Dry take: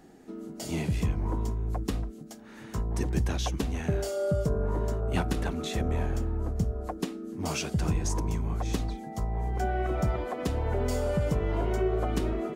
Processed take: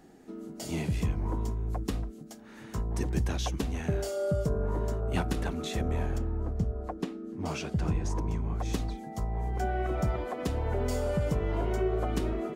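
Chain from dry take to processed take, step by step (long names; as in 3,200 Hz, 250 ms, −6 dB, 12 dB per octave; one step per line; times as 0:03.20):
0:06.18–0:08.60: low-pass filter 2,700 Hz 6 dB per octave
level −1.5 dB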